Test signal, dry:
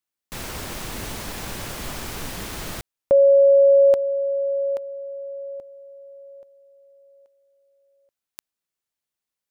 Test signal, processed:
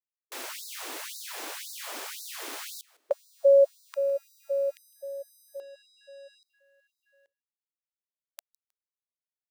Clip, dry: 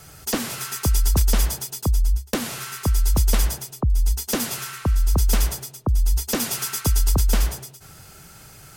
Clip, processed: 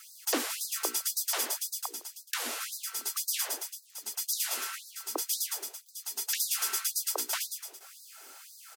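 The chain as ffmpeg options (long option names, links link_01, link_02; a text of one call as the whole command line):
ffmpeg -i in.wav -filter_complex "[0:a]acrusher=bits=7:mix=0:aa=0.5,bandreject=frequency=60:width_type=h:width=6,bandreject=frequency=120:width_type=h:width=6,bandreject=frequency=180:width_type=h:width=6,bandreject=frequency=240:width_type=h:width=6,bandreject=frequency=300:width_type=h:width=6,bandreject=frequency=360:width_type=h:width=6,bandreject=frequency=420:width_type=h:width=6,bandreject=frequency=480:width_type=h:width=6,asplit=2[link_01][link_02];[link_02]aecho=0:1:157|314:0.0631|0.0164[link_03];[link_01][link_03]amix=inputs=2:normalize=0,afftfilt=real='re*gte(b*sr/1024,240*pow(3800/240,0.5+0.5*sin(2*PI*1.9*pts/sr)))':imag='im*gte(b*sr/1024,240*pow(3800/240,0.5+0.5*sin(2*PI*1.9*pts/sr)))':win_size=1024:overlap=0.75,volume=-3.5dB" out.wav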